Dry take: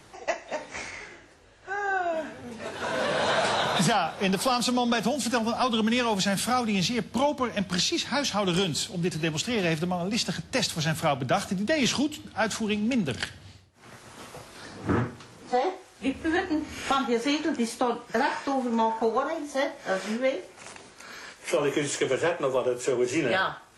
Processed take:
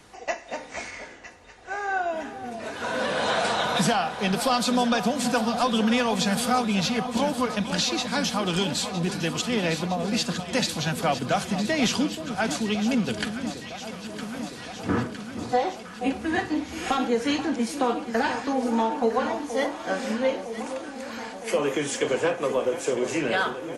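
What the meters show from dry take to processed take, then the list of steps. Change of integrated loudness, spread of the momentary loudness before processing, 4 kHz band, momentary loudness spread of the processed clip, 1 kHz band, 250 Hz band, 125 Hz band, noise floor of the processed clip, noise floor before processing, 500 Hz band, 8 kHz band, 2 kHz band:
+1.0 dB, 13 LU, +1.0 dB, 12 LU, +1.5 dB, +2.0 dB, 0.0 dB, -41 dBFS, -52 dBFS, +1.0 dB, +1.0 dB, +1.0 dB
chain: comb 4.1 ms, depth 31%; on a send: echo with dull and thin repeats by turns 0.48 s, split 1100 Hz, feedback 85%, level -10 dB

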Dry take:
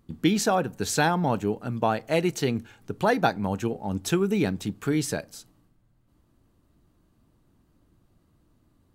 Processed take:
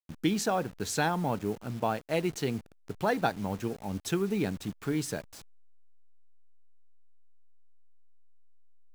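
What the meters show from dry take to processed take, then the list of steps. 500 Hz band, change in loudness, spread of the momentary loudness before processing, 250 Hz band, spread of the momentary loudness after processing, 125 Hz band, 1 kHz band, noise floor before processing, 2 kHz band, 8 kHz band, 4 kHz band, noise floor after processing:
-5.5 dB, -5.5 dB, 8 LU, -5.5 dB, 8 LU, -5.5 dB, -5.5 dB, -66 dBFS, -5.5 dB, -5.5 dB, -5.5 dB, -58 dBFS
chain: level-crossing sampler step -38 dBFS; gain -5.5 dB

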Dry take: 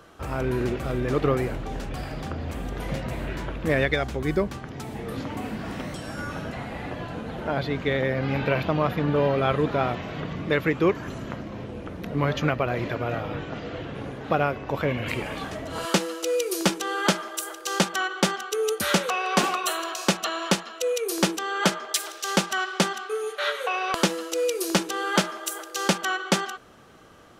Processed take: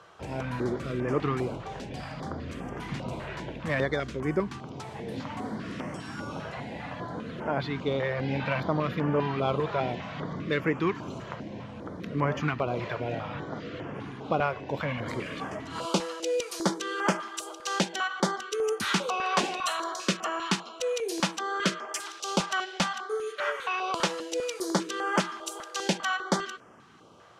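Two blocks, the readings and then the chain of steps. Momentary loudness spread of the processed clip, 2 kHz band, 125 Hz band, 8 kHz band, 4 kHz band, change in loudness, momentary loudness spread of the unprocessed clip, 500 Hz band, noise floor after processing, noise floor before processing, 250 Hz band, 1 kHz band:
10 LU, -4.0 dB, -4.5 dB, -6.0 dB, -4.5 dB, -4.5 dB, 11 LU, -4.5 dB, -45 dBFS, -41 dBFS, -4.0 dB, -3.0 dB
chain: bell 1000 Hz +4.5 dB 0.39 oct; in parallel at -5.5 dB: soft clip -19 dBFS, distortion -11 dB; on the sum: BPF 110–7200 Hz; stepped notch 5 Hz 260–3900 Hz; gain -5.5 dB

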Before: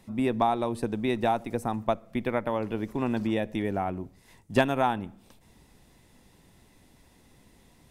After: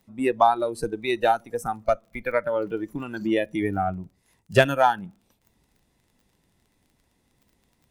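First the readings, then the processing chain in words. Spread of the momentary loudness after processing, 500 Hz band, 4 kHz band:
11 LU, +5.0 dB, +5.0 dB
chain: crackle 27/s -38 dBFS; added harmonics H 6 -34 dB, 7 -36 dB, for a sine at -10.5 dBFS; spectral noise reduction 16 dB; gain +7.5 dB

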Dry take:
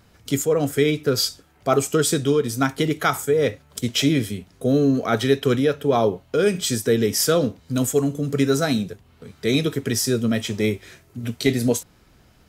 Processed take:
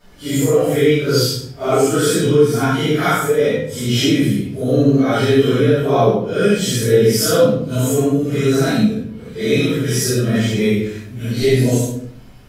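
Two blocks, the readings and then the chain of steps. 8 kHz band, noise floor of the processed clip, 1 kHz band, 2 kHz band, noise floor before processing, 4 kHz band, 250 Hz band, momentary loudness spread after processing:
+3.0 dB, -37 dBFS, +4.5 dB, +5.0 dB, -55 dBFS, +4.0 dB, +5.5 dB, 7 LU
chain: phase scrambler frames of 0.2 s; shoebox room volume 72 m³, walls mixed, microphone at 2.7 m; in parallel at -1.5 dB: compressor, threshold -17 dBFS, peak gain reduction 16.5 dB; on the sum: gain -9 dB

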